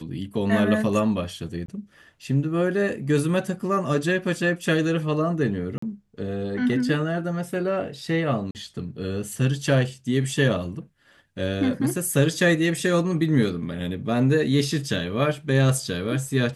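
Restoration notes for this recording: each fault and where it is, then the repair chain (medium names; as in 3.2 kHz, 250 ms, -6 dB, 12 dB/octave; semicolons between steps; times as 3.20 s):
1.66–1.68 s: dropout 23 ms
5.78–5.82 s: dropout 44 ms
8.51–8.55 s: dropout 39 ms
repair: interpolate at 1.66 s, 23 ms; interpolate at 5.78 s, 44 ms; interpolate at 8.51 s, 39 ms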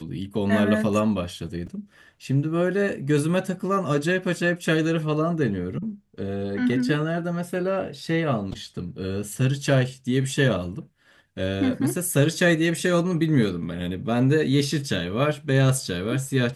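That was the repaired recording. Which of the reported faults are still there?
nothing left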